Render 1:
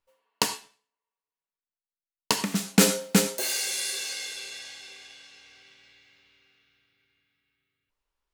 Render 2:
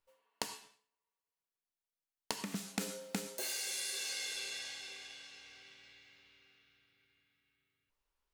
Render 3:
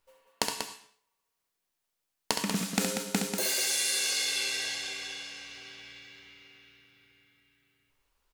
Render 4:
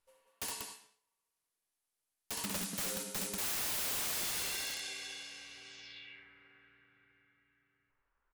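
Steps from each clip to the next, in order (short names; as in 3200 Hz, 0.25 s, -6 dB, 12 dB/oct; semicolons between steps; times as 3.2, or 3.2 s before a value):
compressor 12:1, threshold -33 dBFS, peak gain reduction 20.5 dB; gain -2.5 dB
loudspeakers at several distances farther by 23 m -6 dB, 65 m -7 dB; gain +9 dB
low-pass sweep 11000 Hz -> 1600 Hz, 5.6–6.28; wrapped overs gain 24.5 dB; gain -6.5 dB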